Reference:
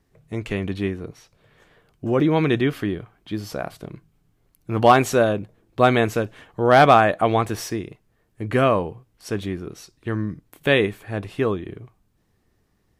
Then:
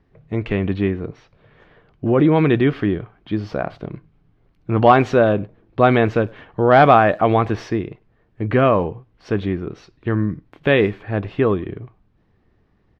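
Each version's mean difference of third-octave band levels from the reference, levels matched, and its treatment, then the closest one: 3.5 dB: treble shelf 9.5 kHz -8.5 dB; in parallel at -2 dB: peak limiter -14.5 dBFS, peak gain reduction 11.5 dB; on the sum: distance through air 250 m; speakerphone echo 100 ms, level -25 dB; trim +1 dB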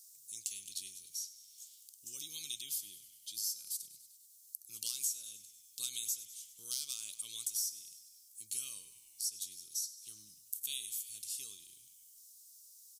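22.5 dB: inverse Chebyshev high-pass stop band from 1.9 kHz, stop band 60 dB; compression 4:1, threshold -49 dBFS, peak gain reduction 16.5 dB; on a send: frequency-shifting echo 99 ms, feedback 60%, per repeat -54 Hz, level -16 dB; on the sum: three bands compressed up and down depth 40%; trim +15 dB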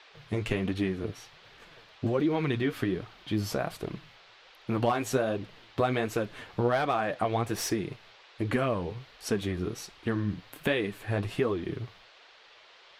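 6.0 dB: expander -53 dBFS; compression 6:1, threshold -26 dBFS, peak gain reduction 16.5 dB; band noise 400–4100 Hz -57 dBFS; flange 1.3 Hz, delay 2.1 ms, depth 9.2 ms, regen +34%; trim +5 dB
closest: first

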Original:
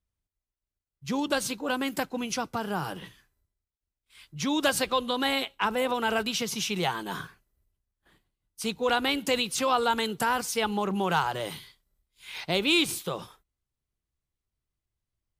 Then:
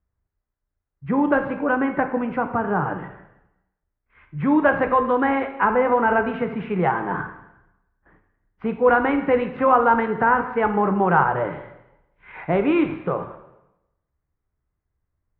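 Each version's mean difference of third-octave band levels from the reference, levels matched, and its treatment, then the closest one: 11.5 dB: steep low-pass 1.9 kHz 36 dB/octave; plate-style reverb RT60 0.89 s, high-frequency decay 1×, DRR 6 dB; trim +8 dB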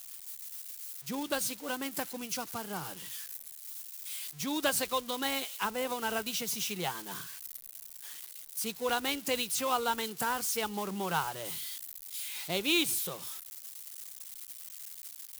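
6.0 dB: zero-crossing glitches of -23 dBFS; upward expansion 1.5:1, over -35 dBFS; trim -4.5 dB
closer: second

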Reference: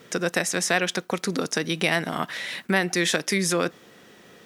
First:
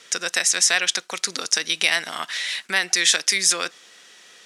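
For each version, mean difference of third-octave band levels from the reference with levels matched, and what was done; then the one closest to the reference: 8.5 dB: frequency weighting ITU-R 468; trim -2 dB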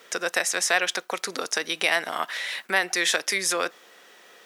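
5.5 dB: high-pass 590 Hz 12 dB/octave; trim +1.5 dB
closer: second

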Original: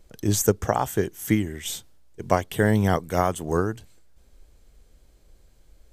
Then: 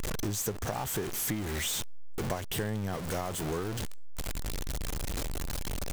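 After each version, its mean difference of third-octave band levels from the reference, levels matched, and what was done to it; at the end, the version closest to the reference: 11.0 dB: jump at every zero crossing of -18 dBFS; compression 5:1, threshold -22 dBFS, peak gain reduction 10 dB; trim -8.5 dB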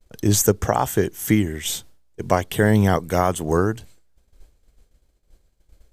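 1.0 dB: expander -44 dBFS; in parallel at +1 dB: peak limiter -13.5 dBFS, peak gain reduction 9.5 dB; on the sum: trim -1 dB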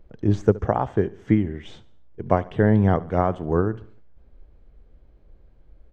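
8.0 dB: tape spacing loss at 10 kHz 45 dB; feedback delay 71 ms, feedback 47%, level -20 dB; trim +4 dB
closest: second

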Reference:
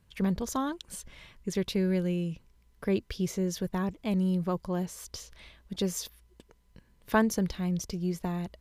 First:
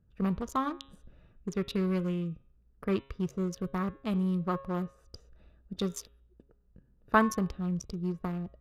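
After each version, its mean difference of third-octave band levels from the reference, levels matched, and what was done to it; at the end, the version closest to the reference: 5.0 dB: local Wiener filter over 41 samples; peaking EQ 1.2 kHz +12.5 dB 0.41 oct; de-hum 136.6 Hz, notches 29; dynamic bell 2.7 kHz, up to +3 dB, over -52 dBFS, Q 1.1; trim -1.5 dB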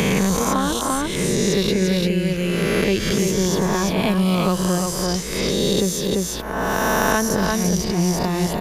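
13.0 dB: reverse spectral sustain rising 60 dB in 1.33 s; peaking EQ 230 Hz -2.5 dB 0.83 oct; on a send: delay 343 ms -6 dB; on the sum: three bands compressed up and down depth 100%; trim +8.5 dB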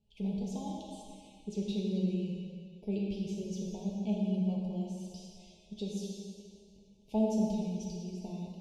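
9.0 dB: elliptic band-stop 840–2600 Hz, stop band 40 dB; distance through air 79 m; feedback comb 210 Hz, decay 0.15 s, harmonics all, mix 90%; algorithmic reverb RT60 2.1 s, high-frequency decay 0.95×, pre-delay 0 ms, DRR -2 dB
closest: first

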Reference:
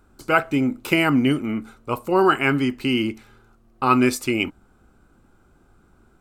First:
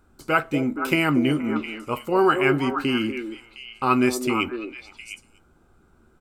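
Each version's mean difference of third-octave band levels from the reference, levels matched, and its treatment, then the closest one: 3.5 dB: doubling 13 ms -12 dB; on a send: repeats whose band climbs or falls 237 ms, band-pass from 420 Hz, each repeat 1.4 oct, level -3.5 dB; on the sum: trim -2.5 dB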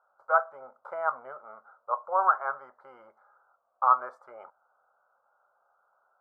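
15.0 dB: elliptic band-pass 560–1400 Hz, stop band 40 dB; dynamic bell 1.1 kHz, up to +6 dB, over -41 dBFS, Q 8; trim -3.5 dB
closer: first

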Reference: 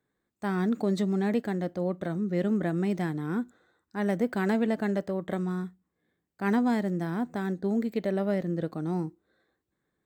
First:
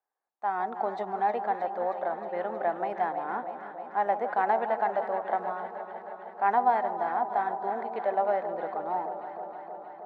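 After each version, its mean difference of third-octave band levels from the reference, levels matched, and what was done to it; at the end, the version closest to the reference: 9.5 dB: level rider gain up to 11.5 dB; ladder band-pass 880 Hz, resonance 65%; echo whose repeats swap between lows and highs 157 ms, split 900 Hz, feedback 86%, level -8.5 dB; trim +4 dB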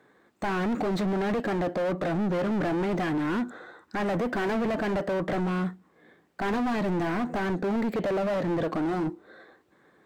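6.5 dB: in parallel at +0.5 dB: compression, threshold -33 dBFS, peak gain reduction 11.5 dB; on the sum: overdrive pedal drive 31 dB, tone 1.1 kHz, clips at -13 dBFS; overload inside the chain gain 20 dB; trim -4.5 dB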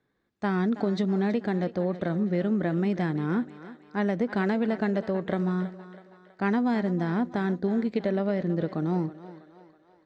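3.5 dB: low-pass 5.5 kHz 24 dB/octave; compression, threshold -27 dBFS, peak gain reduction 6.5 dB; on a send: thinning echo 324 ms, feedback 54%, high-pass 330 Hz, level -13.5 dB; on the sum: trim +5 dB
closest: third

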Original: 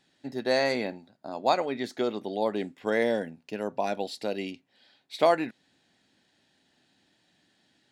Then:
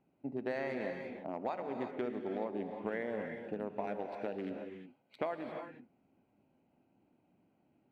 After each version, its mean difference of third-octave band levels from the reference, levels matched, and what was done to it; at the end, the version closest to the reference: 8.0 dB: local Wiener filter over 25 samples; resonant high shelf 3.2 kHz -11.5 dB, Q 1.5; compression 6:1, threshold -34 dBFS, peak gain reduction 17 dB; gated-style reverb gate 380 ms rising, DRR 4 dB; trim -1 dB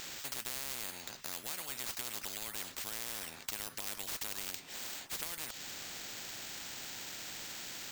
17.5 dB: pre-emphasis filter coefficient 0.9; compression 3:1, threshold -51 dBFS, peak gain reduction 14 dB; careless resampling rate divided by 4×, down none, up hold; spectrum-flattening compressor 10:1; trim +16 dB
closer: first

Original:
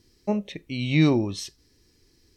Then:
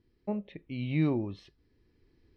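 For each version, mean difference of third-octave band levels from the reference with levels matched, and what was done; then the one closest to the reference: 3.0 dB: recorder AGC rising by 5.2 dB/s; distance through air 410 m; trim -7.5 dB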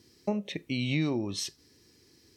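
4.5 dB: high-pass 110 Hz 12 dB/octave; compression 4:1, threshold -30 dBFS, peak gain reduction 13 dB; trim +2.5 dB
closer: first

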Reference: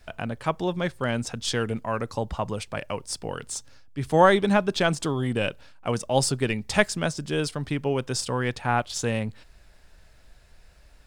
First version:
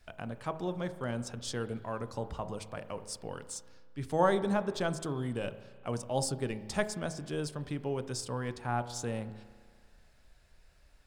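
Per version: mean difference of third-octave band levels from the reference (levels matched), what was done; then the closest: 3.0 dB: de-hum 53.35 Hz, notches 19; dynamic bell 2.5 kHz, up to -8 dB, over -43 dBFS, Q 0.99; spring tank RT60 1.9 s, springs 33 ms, chirp 35 ms, DRR 14 dB; trim -8 dB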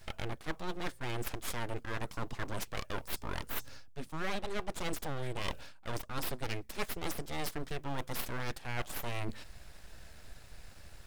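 10.5 dB: treble shelf 9 kHz +5 dB; reverse; compression 8:1, threshold -35 dBFS, peak gain reduction 22.5 dB; reverse; full-wave rectifier; trim +3.5 dB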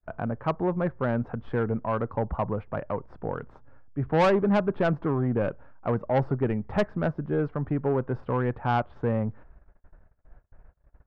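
8.0 dB: low-pass 1.4 kHz 24 dB/octave; gate -50 dBFS, range -31 dB; saturation -18.5 dBFS, distortion -11 dB; trim +2 dB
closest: first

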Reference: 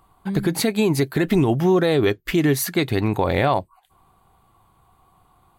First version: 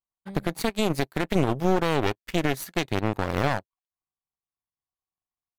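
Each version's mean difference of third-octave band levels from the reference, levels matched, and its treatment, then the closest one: 5.5 dB: one-sided wavefolder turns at -18.5 dBFS; power-law waveshaper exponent 2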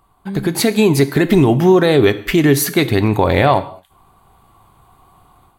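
2.0 dB: level rider gain up to 8 dB; gated-style reverb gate 240 ms falling, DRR 11.5 dB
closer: second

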